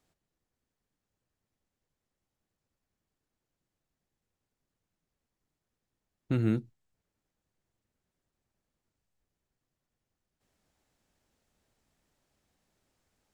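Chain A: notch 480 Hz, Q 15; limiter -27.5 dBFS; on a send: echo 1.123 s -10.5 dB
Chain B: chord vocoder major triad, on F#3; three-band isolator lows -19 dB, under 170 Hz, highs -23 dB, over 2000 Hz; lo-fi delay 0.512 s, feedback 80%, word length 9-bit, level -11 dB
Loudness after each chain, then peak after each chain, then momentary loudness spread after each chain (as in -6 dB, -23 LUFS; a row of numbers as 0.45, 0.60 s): -40.5, -39.0 LUFS; -27.5, -19.5 dBFS; 19, 23 LU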